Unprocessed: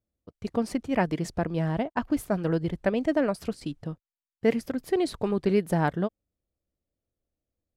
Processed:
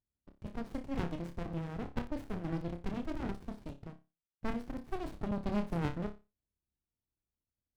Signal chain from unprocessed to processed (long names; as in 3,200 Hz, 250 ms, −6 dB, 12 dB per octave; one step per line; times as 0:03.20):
flutter between parallel walls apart 5 metres, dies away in 0.27 s
regular buffer underruns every 0.54 s, samples 256, zero, from 0:00.45
windowed peak hold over 65 samples
level −8 dB